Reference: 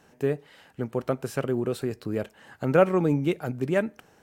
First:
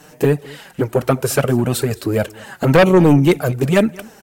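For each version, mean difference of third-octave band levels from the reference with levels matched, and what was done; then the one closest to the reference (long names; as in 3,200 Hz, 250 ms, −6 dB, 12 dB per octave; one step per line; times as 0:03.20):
5.0 dB: flanger swept by the level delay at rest 6.8 ms, full sweep at −17.5 dBFS
in parallel at −9 dB: sine wavefolder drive 12 dB, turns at −8 dBFS
on the sum: high-shelf EQ 6,200 Hz +10 dB
single-tap delay 212 ms −22.5 dB
level +6 dB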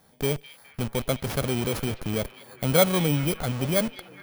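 9.5 dB: samples in bit-reversed order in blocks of 16 samples
parametric band 350 Hz −8 dB 0.66 octaves
in parallel at −4 dB: comparator with hysteresis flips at −36.5 dBFS
on the sum: echo through a band-pass that steps 207 ms, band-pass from 2,900 Hz, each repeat −0.7 octaves, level −11 dB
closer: first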